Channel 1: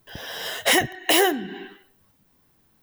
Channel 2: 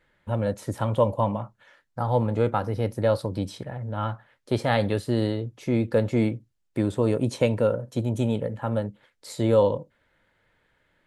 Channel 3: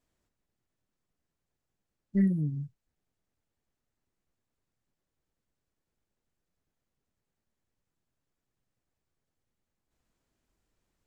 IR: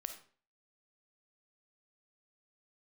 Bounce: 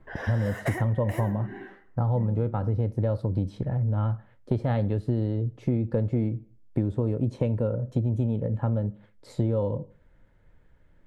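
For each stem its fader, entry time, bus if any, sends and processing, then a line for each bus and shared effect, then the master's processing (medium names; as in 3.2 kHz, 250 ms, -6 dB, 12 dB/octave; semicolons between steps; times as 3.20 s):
+3.0 dB, 0.00 s, send -8 dB, FFT filter 2 kHz 0 dB, 3.2 kHz -19 dB, 7.8 kHz -9 dB; level-controlled noise filter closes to 1.7 kHz, open at -30.5 dBFS; compression 3:1, threshold -31 dBFS, peak gain reduction 12 dB; auto duck -15 dB, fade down 1.80 s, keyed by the second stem
-3.5 dB, 0.00 s, send -12 dB, tilt EQ -4 dB/octave
-6.5 dB, 0.00 s, no send, none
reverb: on, RT60 0.45 s, pre-delay 10 ms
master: compression, threshold -22 dBFS, peak gain reduction 11.5 dB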